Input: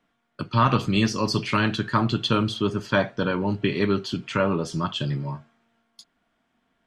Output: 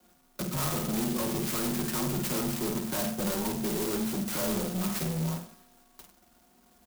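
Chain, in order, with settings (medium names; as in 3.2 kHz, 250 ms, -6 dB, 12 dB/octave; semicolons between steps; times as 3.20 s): median filter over 9 samples; low-pass 5.5 kHz 24 dB/octave; hum notches 50/100/150/200 Hz; comb 5.7 ms, depth 81%; in parallel at +1 dB: compression, threshold -36 dBFS, peak gain reduction 21 dB; on the sum: frequency shift +22 Hz; saturation -29.5 dBFS, distortion -4 dB; flutter echo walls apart 8.6 m, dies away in 0.46 s; sampling jitter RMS 0.15 ms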